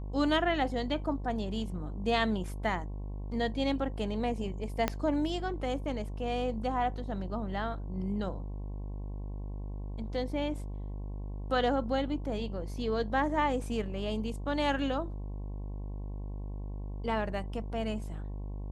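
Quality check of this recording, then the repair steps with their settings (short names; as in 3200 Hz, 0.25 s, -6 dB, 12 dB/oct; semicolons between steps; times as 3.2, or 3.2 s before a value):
buzz 50 Hz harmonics 22 -38 dBFS
4.88 pop -13 dBFS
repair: de-click; de-hum 50 Hz, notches 22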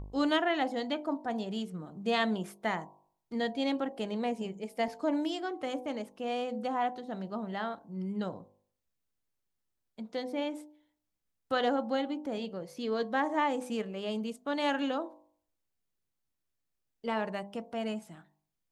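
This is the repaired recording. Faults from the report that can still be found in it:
4.88 pop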